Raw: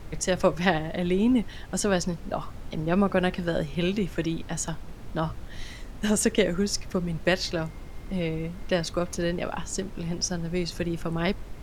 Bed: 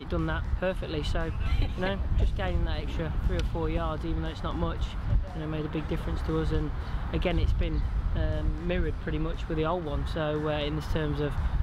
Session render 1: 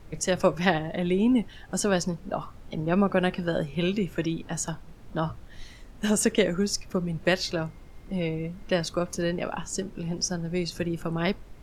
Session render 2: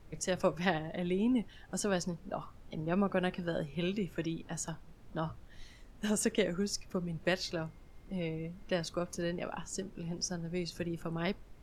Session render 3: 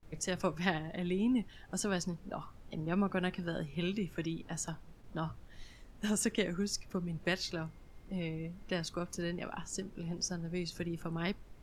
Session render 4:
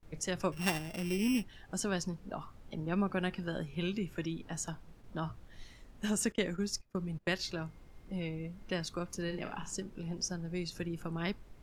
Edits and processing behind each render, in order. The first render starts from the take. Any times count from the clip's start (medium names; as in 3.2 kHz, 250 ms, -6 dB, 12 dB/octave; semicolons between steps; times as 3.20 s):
noise print and reduce 7 dB
trim -8 dB
gate with hold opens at -48 dBFS; dynamic bell 560 Hz, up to -6 dB, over -46 dBFS, Q 1.6
0.52–1.44 s: sorted samples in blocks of 16 samples; 6.32–7.39 s: gate -41 dBFS, range -20 dB; 9.24–9.76 s: flutter echo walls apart 7.4 m, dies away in 0.33 s